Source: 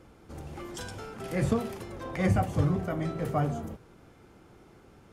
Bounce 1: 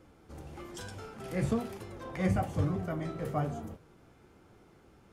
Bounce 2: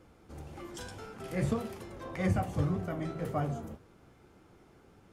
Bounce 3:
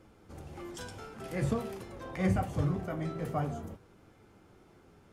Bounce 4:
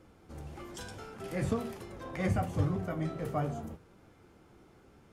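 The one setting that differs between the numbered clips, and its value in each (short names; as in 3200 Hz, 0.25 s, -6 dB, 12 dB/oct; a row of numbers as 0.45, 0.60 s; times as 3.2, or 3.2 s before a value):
flange, rate: 1.1, 1.8, 0.24, 0.74 Hz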